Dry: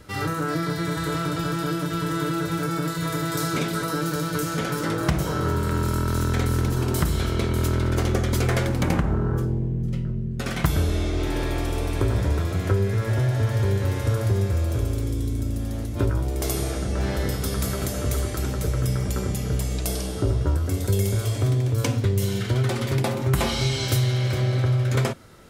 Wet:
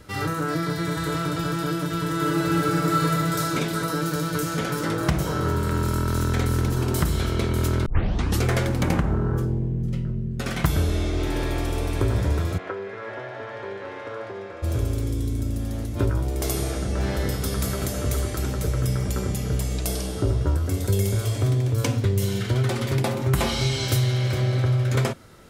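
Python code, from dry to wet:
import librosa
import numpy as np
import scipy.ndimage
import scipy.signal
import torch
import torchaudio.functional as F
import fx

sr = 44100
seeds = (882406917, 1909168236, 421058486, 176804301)

y = fx.reverb_throw(x, sr, start_s=2.15, length_s=0.89, rt60_s=2.9, drr_db=-2.0)
y = fx.bandpass_edges(y, sr, low_hz=500.0, high_hz=2300.0, at=(12.57, 14.62), fade=0.02)
y = fx.edit(y, sr, fx.tape_start(start_s=7.86, length_s=0.56), tone=tone)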